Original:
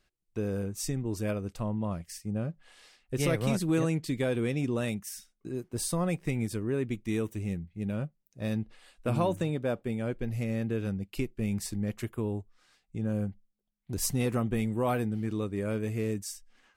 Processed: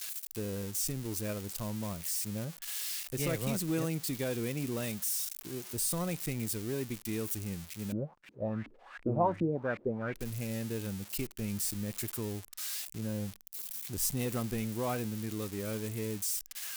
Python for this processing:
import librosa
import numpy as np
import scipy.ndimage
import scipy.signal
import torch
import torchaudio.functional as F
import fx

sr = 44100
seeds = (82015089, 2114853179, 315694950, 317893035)

y = x + 0.5 * 10.0 ** (-24.0 / 20.0) * np.diff(np.sign(x), prepend=np.sign(x[:1]))
y = fx.filter_lfo_lowpass(y, sr, shape='saw_up', hz=2.7, low_hz=260.0, high_hz=2400.0, q=4.8, at=(7.92, 10.14))
y = y * 10.0 ** (-5.5 / 20.0)